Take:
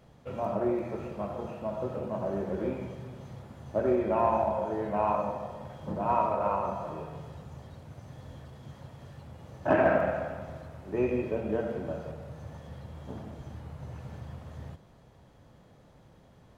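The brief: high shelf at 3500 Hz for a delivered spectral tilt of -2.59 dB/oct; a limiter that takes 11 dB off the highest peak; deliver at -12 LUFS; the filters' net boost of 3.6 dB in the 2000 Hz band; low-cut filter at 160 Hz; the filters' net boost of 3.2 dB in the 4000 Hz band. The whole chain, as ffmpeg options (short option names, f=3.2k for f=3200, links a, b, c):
-af "highpass=160,equalizer=f=2k:t=o:g=5.5,highshelf=f=3.5k:g=-7,equalizer=f=4k:t=o:g=6.5,volume=21.5dB,alimiter=limit=0dB:level=0:latency=1"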